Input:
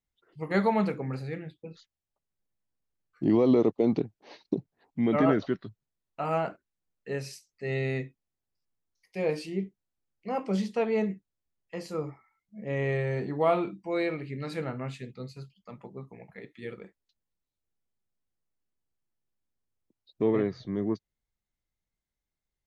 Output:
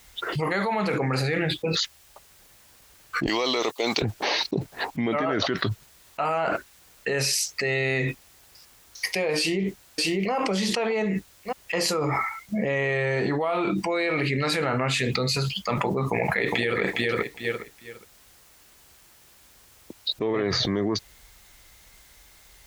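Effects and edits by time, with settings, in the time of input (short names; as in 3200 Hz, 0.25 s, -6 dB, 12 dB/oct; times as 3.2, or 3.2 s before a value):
3.26–4.02 differentiator
9.38–10.32 echo throw 0.6 s, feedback 15%, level -13.5 dB
16.07–16.81 echo throw 0.41 s, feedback 20%, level -9 dB
whole clip: HPF 40 Hz; bell 180 Hz -12.5 dB 2.9 oct; fast leveller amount 100%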